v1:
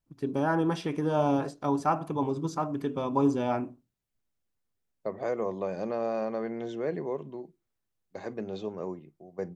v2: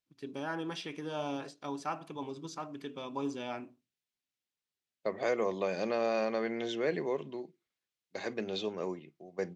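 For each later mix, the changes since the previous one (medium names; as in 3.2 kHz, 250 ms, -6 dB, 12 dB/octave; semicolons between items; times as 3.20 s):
first voice -10.5 dB; master: add frequency weighting D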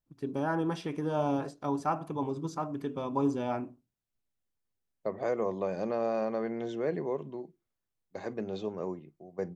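first voice +6.5 dB; master: remove frequency weighting D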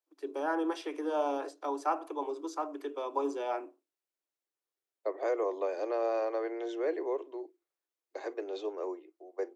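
master: add steep high-pass 300 Hz 96 dB/octave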